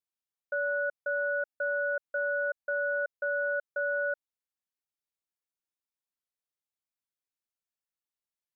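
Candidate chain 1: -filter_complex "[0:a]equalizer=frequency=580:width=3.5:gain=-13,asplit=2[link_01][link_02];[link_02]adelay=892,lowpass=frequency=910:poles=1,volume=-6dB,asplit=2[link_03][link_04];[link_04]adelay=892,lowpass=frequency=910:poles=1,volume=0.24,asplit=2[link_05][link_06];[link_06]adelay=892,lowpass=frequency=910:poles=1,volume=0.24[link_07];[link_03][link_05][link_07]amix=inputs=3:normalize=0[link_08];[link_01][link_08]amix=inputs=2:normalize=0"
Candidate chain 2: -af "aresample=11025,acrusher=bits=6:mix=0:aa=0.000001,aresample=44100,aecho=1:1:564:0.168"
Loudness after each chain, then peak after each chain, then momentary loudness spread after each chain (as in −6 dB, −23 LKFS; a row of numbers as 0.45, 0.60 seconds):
−34.0, −30.5 LKFS; −28.0, −22.0 dBFS; 13, 9 LU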